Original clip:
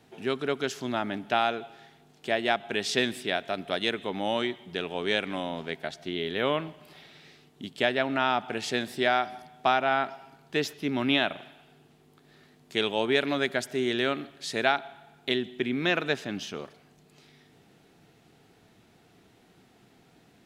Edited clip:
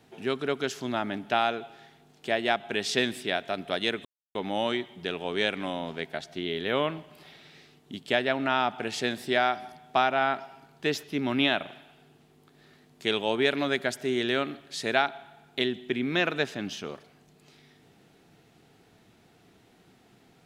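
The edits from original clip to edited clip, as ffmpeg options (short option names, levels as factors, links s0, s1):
-filter_complex "[0:a]asplit=2[s0][s1];[s0]atrim=end=4.05,asetpts=PTS-STARTPTS,afade=t=out:st=4.046:d=0.004:c=hsin,apad=pad_dur=0.3[s2];[s1]atrim=start=4.05,asetpts=PTS-STARTPTS,afade=t=in:d=0.004:c=hsin[s3];[s2][s3]concat=n=2:v=0:a=1"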